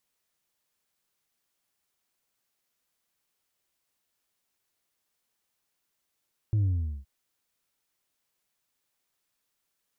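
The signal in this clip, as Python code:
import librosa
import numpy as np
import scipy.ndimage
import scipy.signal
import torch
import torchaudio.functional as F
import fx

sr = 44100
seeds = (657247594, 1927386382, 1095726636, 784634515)

y = fx.sub_drop(sr, level_db=-22, start_hz=110.0, length_s=0.52, drive_db=2.5, fade_s=0.42, end_hz=65.0)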